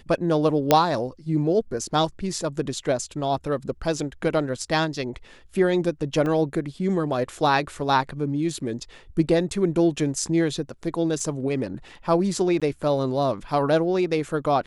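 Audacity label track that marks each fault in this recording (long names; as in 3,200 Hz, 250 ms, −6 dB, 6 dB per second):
0.710000	0.710000	click −2 dBFS
6.260000	6.260000	drop-out 2.1 ms
11.200000	11.200000	drop-out 2.4 ms
12.600000	12.620000	drop-out 16 ms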